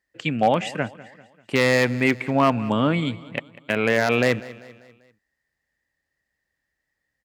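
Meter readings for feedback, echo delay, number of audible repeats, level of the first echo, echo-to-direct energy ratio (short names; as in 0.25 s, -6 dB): 48%, 0.196 s, 3, -19.0 dB, -18.0 dB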